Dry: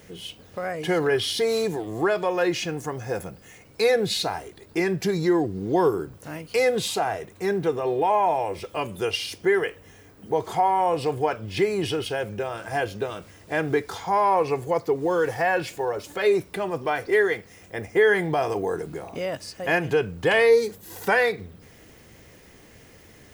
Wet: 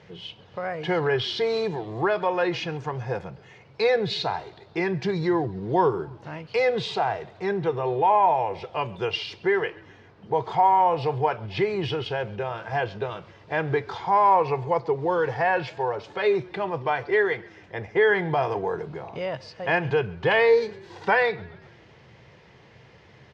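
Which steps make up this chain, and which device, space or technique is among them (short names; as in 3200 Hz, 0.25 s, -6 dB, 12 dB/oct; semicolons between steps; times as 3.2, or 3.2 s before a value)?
frequency-shifting delay pedal into a guitar cabinet (frequency-shifting echo 0.134 s, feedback 55%, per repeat -36 Hz, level -23 dB; speaker cabinet 78–4500 Hz, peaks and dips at 130 Hz +7 dB, 270 Hz -10 dB, 930 Hz +6 dB); gain -1 dB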